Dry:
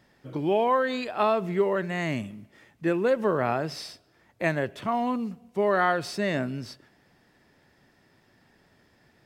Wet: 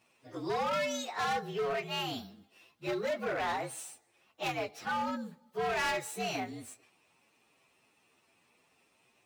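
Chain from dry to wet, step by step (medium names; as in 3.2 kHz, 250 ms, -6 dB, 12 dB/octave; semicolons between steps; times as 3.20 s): frequency axis rescaled in octaves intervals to 118%; high-pass 620 Hz 6 dB/octave; hard clipper -29 dBFS, distortion -9 dB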